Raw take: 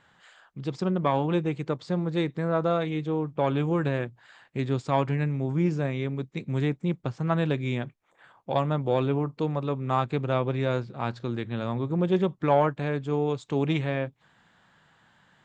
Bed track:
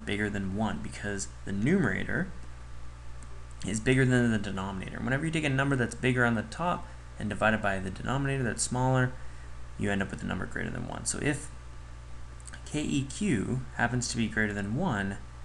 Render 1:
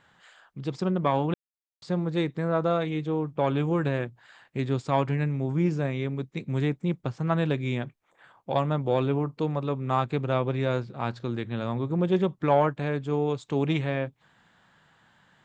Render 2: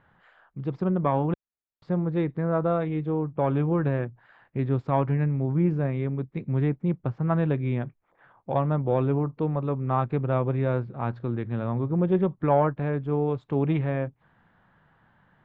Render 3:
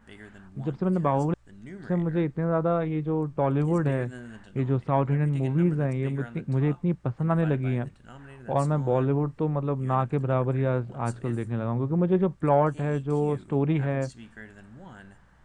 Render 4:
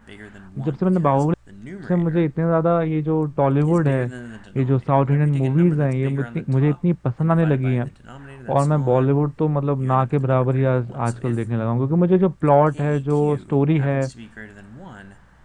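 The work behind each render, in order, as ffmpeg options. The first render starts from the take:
-filter_complex "[0:a]asplit=3[a][b][c];[a]atrim=end=1.34,asetpts=PTS-STARTPTS,afade=t=out:st=1.336:d=0.004:c=hsin[d];[b]atrim=start=1.34:end=1.82,asetpts=PTS-STARTPTS,volume=0[e];[c]atrim=start=1.82,asetpts=PTS-STARTPTS,afade=t=in:d=0.004:c=hsin[f];[d][e][f]concat=n=3:v=0:a=1"
-af "lowpass=1.7k,lowshelf=f=85:g=10.5"
-filter_complex "[1:a]volume=-16.5dB[a];[0:a][a]amix=inputs=2:normalize=0"
-af "volume=6.5dB"

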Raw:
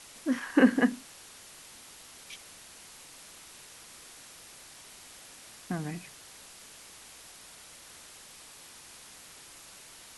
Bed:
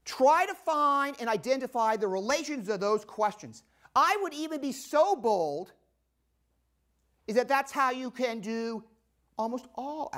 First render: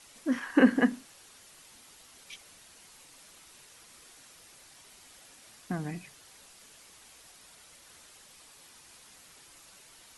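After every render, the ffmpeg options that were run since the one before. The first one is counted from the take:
-af "afftdn=nr=6:nf=-51"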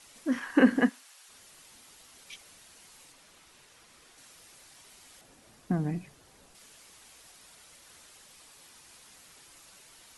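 -filter_complex "[0:a]asplit=3[a][b][c];[a]afade=t=out:st=0.88:d=0.02[d];[b]highpass=840,afade=t=in:st=0.88:d=0.02,afade=t=out:st=1.28:d=0.02[e];[c]afade=t=in:st=1.28:d=0.02[f];[d][e][f]amix=inputs=3:normalize=0,asettb=1/sr,asplit=3[g][h][i];[g]atrim=end=3.124[j];[h]atrim=start=3.12:end=4.18,asetpts=PTS-STARTPTS,afade=t=in:d=0.004:c=qsin,afade=t=out:st=1.056:d=0.004:c=qsin,highshelf=f=5.4k:g=-7.5[k];[i]atrim=start=4.176[l];[j][k]acrossfade=d=0.004:c1=hsin:c2=qsin[m];[m][l]acrossfade=d=0.004:c1=qsin:c2=hsin,asettb=1/sr,asplit=3[n][o][p];[n]atrim=end=5.214[q];[o]atrim=start=5.21:end=6.55,asetpts=PTS-STARTPTS,afade=t=in:d=0.004:c=qsin,afade=t=out:st=1.336:d=0.004:c=qsin,tiltshelf=f=910:g=6.5[r];[p]atrim=start=6.546[s];[q][r]acrossfade=d=0.004:c1=hsin:c2=qsin[t];[t][s]acrossfade=d=0.004:c1=qsin:c2=hsin"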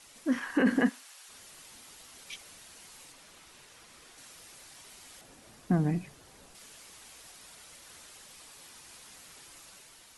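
-af "alimiter=limit=-18.5dB:level=0:latency=1:release=16,dynaudnorm=f=150:g=7:m=3dB"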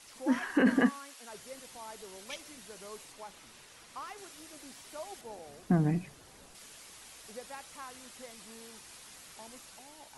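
-filter_complex "[1:a]volume=-20dB[a];[0:a][a]amix=inputs=2:normalize=0"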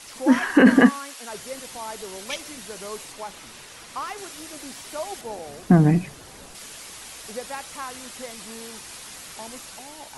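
-af "volume=11.5dB"

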